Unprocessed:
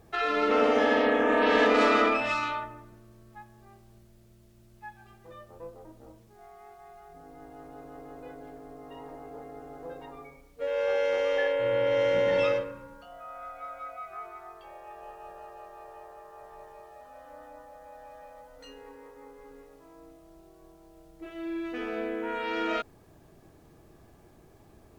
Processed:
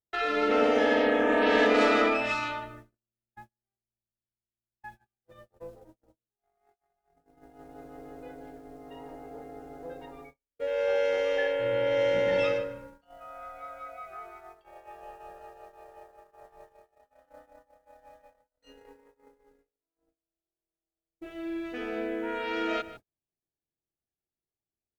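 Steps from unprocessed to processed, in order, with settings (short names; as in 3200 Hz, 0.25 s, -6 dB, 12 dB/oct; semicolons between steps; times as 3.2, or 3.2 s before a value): outdoor echo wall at 26 m, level -15 dB; gate -46 dBFS, range -43 dB; bell 1100 Hz -10 dB 0.23 oct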